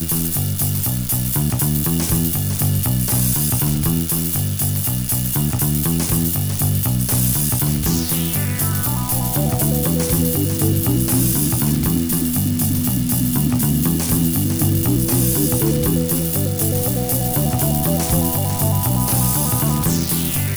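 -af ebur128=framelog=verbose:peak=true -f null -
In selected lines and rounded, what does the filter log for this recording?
Integrated loudness:
  I:         -17.5 LUFS
  Threshold: -27.5 LUFS
Loudness range:
  LRA:         0.8 LU
  Threshold: -37.5 LUFS
  LRA low:   -17.8 LUFS
  LRA high:  -17.0 LUFS
True peak:
  Peak:       -6.9 dBFS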